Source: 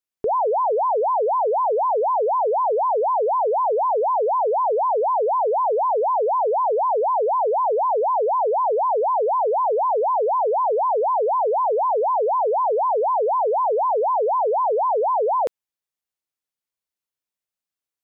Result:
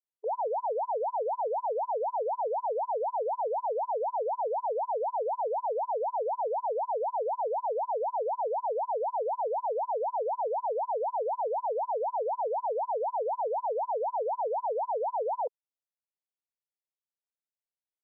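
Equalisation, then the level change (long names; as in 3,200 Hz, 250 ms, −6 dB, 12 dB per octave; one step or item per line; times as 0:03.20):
linear-phase brick-wall band-pass 420–1,000 Hz
high-frequency loss of the air 250 metres
−8.5 dB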